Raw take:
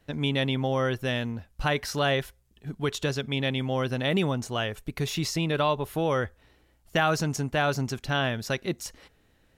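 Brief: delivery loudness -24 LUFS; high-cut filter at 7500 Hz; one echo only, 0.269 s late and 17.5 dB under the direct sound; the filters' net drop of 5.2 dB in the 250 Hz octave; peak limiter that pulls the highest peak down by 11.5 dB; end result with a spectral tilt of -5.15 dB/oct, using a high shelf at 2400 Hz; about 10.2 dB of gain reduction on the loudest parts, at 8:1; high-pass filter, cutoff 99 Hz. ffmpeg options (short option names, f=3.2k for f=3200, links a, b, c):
-af "highpass=99,lowpass=7.5k,equalizer=f=250:t=o:g=-7,highshelf=f=2.4k:g=-8,acompressor=threshold=-33dB:ratio=8,alimiter=level_in=8.5dB:limit=-24dB:level=0:latency=1,volume=-8.5dB,aecho=1:1:269:0.133,volume=18.5dB"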